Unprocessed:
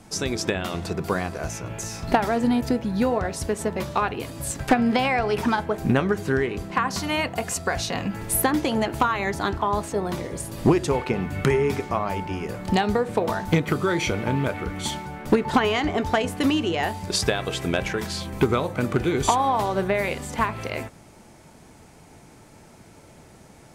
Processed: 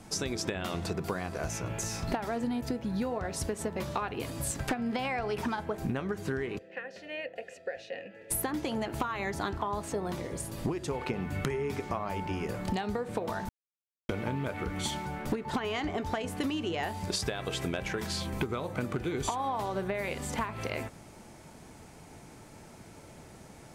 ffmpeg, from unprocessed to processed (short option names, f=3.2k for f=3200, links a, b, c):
-filter_complex "[0:a]asplit=3[a][b][c];[a]afade=t=out:st=6.57:d=0.02[d];[b]asplit=3[e][f][g];[e]bandpass=f=530:t=q:w=8,volume=0dB[h];[f]bandpass=f=1.84k:t=q:w=8,volume=-6dB[i];[g]bandpass=f=2.48k:t=q:w=8,volume=-9dB[j];[h][i][j]amix=inputs=3:normalize=0,afade=t=in:st=6.57:d=0.02,afade=t=out:st=8.3:d=0.02[k];[c]afade=t=in:st=8.3:d=0.02[l];[d][k][l]amix=inputs=3:normalize=0,asplit=5[m][n][o][p][q];[m]atrim=end=10.122[r];[n]atrim=start=10.118:end=11.012,asetpts=PTS-STARTPTS,volume=-3.5dB[s];[o]atrim=start=11.008:end=13.49,asetpts=PTS-STARTPTS,afade=t=out:st=2.478:d=0.004:c=hsin[t];[p]atrim=start=13.49:end=14.09,asetpts=PTS-STARTPTS,volume=0[u];[q]atrim=start=14.09,asetpts=PTS-STARTPTS,afade=t=in:d=0.004:c=hsin[v];[r][s]acrossfade=d=0.004:c1=hsin:c2=hsin[w];[t][u][v]concat=n=3:v=0:a=1[x];[w][x]acrossfade=d=0.004:c1=hsin:c2=hsin,acompressor=threshold=-28dB:ratio=6,volume=-1.5dB"